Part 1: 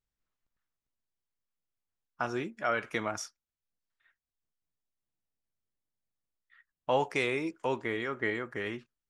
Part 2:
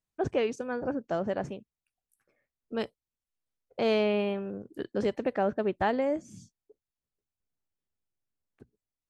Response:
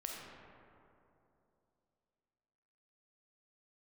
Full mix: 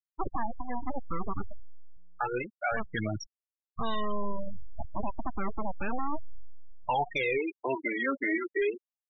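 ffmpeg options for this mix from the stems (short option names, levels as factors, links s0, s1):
-filter_complex "[0:a]lowshelf=f=150:g=5,aphaser=in_gain=1:out_gain=1:delay=3.8:decay=0.74:speed=0.31:type=triangular,volume=1.06[s0];[1:a]aeval=exprs='abs(val(0))':c=same,volume=1.19,asplit=2[s1][s2];[s2]volume=0.0708[s3];[2:a]atrim=start_sample=2205[s4];[s3][s4]afir=irnorm=-1:irlink=0[s5];[s0][s1][s5]amix=inputs=3:normalize=0,afftfilt=real='re*gte(hypot(re,im),0.0708)':imag='im*gte(hypot(re,im),0.0708)':win_size=1024:overlap=0.75,highshelf=f=2700:g=7,alimiter=limit=0.0944:level=0:latency=1:release=21"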